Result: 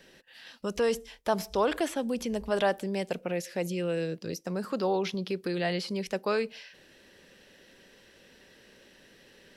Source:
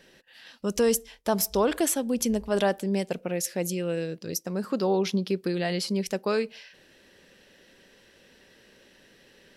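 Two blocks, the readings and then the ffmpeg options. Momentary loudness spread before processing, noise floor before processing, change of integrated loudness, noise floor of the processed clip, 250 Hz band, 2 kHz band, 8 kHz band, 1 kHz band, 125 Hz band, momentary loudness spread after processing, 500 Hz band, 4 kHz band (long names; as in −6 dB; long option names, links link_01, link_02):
7 LU, −58 dBFS, −3.5 dB, −58 dBFS, −5.0 dB, 0.0 dB, −13.0 dB, −0.5 dB, −4.0 dB, 9 LU, −2.5 dB, −3.0 dB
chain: -filter_complex "[0:a]acrossover=split=4000[link_01][link_02];[link_02]acompressor=threshold=-44dB:ratio=4:attack=1:release=60[link_03];[link_01][link_03]amix=inputs=2:normalize=0,acrossover=split=460|1100[link_04][link_05][link_06];[link_04]alimiter=level_in=4.5dB:limit=-24dB:level=0:latency=1,volume=-4.5dB[link_07];[link_07][link_05][link_06]amix=inputs=3:normalize=0"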